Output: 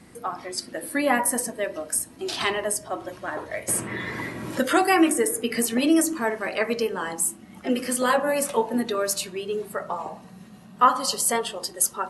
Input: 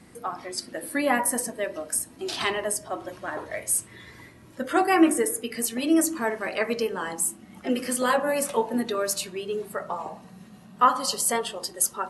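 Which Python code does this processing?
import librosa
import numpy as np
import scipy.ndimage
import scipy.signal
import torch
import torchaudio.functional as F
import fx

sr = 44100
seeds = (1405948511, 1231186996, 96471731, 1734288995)

y = fx.band_squash(x, sr, depth_pct=70, at=(3.68, 6.13))
y = y * 10.0 ** (1.5 / 20.0)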